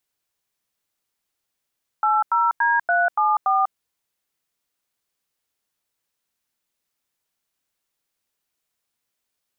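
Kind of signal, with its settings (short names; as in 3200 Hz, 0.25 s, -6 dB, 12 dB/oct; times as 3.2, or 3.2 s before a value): DTMF "80D374", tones 0.195 s, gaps 91 ms, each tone -18.5 dBFS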